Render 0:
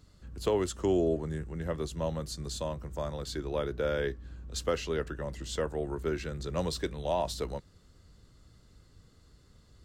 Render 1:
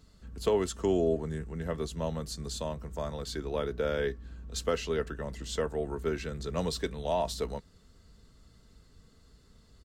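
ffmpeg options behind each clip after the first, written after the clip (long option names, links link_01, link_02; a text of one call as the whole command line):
ffmpeg -i in.wav -af "aecho=1:1:4.5:0.35" out.wav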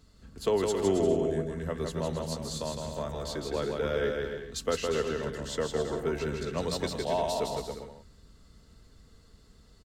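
ffmpeg -i in.wav -af "bandreject=frequency=60:width_type=h:width=6,bandreject=frequency=120:width_type=h:width=6,bandreject=frequency=180:width_type=h:width=6,aecho=1:1:160|272|350.4|405.3|443.7:0.631|0.398|0.251|0.158|0.1" out.wav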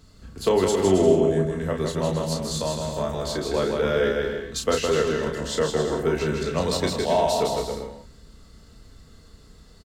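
ffmpeg -i in.wav -filter_complex "[0:a]asplit=2[link_01][link_02];[link_02]adelay=32,volume=-5dB[link_03];[link_01][link_03]amix=inputs=2:normalize=0,volume=6.5dB" out.wav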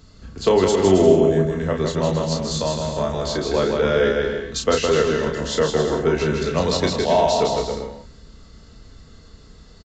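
ffmpeg -i in.wav -af "aresample=16000,aresample=44100,volume=4dB" out.wav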